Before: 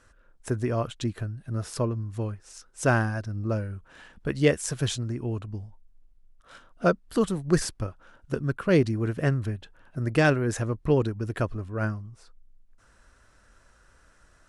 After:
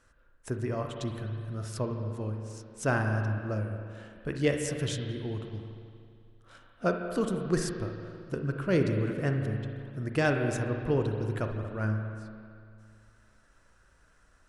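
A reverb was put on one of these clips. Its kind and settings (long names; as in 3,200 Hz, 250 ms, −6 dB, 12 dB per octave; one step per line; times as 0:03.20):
spring reverb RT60 2.3 s, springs 37/56 ms, chirp 30 ms, DRR 3.5 dB
level −5.5 dB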